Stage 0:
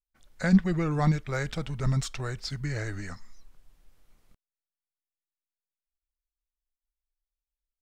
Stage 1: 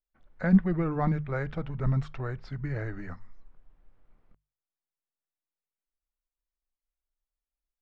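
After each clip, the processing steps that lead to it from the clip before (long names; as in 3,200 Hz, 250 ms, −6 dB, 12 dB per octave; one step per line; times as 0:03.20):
low-pass filter 1,600 Hz 12 dB per octave
mains-hum notches 50/100/150 Hz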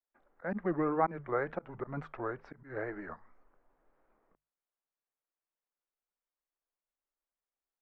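volume swells 143 ms
tape wow and flutter 140 cents
three-way crossover with the lows and the highs turned down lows −21 dB, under 280 Hz, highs −21 dB, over 2,000 Hz
level +3 dB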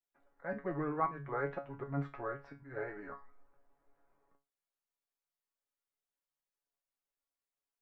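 tuned comb filter 140 Hz, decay 0.25 s, harmonics all, mix 90%
level +6.5 dB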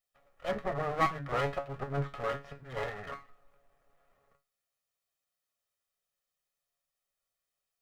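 lower of the sound and its delayed copy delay 1.6 ms
level +7 dB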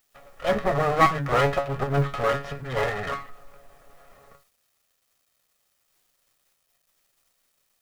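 mu-law and A-law mismatch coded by mu
level +9 dB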